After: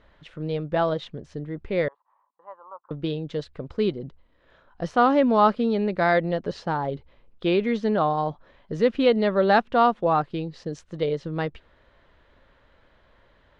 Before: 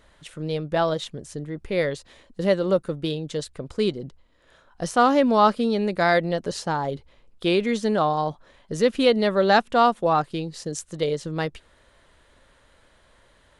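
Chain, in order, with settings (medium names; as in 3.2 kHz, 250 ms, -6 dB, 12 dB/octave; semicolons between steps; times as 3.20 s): 1.88–2.91 s: Butterworth band-pass 990 Hz, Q 3.5; distance through air 230 m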